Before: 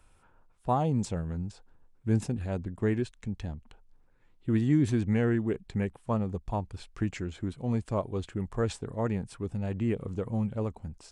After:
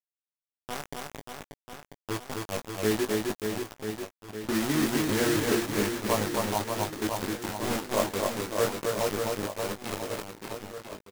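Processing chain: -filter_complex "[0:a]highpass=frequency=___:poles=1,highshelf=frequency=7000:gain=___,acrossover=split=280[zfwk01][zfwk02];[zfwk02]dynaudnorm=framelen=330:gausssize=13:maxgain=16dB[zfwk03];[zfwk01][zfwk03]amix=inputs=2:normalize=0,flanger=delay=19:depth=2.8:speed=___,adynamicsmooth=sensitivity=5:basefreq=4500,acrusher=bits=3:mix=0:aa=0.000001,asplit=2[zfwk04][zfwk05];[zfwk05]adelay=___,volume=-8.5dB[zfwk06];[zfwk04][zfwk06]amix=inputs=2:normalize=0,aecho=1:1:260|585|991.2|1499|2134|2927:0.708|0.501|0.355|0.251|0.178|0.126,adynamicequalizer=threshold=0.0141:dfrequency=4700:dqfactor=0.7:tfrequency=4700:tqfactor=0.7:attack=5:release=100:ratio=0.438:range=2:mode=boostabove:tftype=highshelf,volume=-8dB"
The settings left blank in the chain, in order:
74, -9.5, 0.34, 19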